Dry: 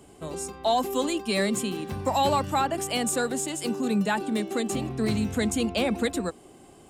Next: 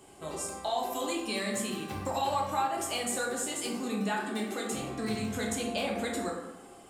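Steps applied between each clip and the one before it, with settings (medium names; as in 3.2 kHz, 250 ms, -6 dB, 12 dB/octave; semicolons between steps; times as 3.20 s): bass shelf 360 Hz -8.5 dB; compression 3:1, threshold -32 dBFS, peak gain reduction 9 dB; plate-style reverb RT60 1.1 s, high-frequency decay 0.5×, DRR -2 dB; trim -2 dB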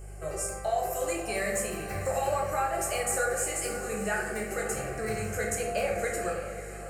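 hum 50 Hz, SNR 14 dB; static phaser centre 960 Hz, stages 6; echo that smears into a reverb 567 ms, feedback 43%, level -11 dB; trim +5.5 dB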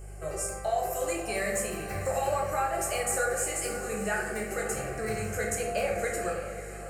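no audible change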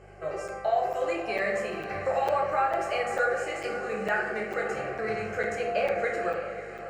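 high-pass 420 Hz 6 dB/octave; distance through air 240 m; crackling interface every 0.45 s, samples 256, zero, from 0.48 s; trim +5.5 dB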